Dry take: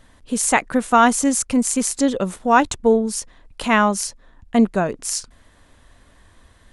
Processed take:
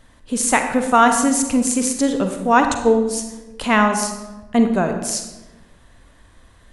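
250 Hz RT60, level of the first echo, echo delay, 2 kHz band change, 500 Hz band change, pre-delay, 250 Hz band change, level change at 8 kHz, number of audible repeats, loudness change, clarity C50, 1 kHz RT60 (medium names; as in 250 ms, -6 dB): 1.4 s, no echo, no echo, +1.0 dB, +1.0 dB, 38 ms, +1.0 dB, +0.5 dB, no echo, +1.0 dB, 6.5 dB, 1.0 s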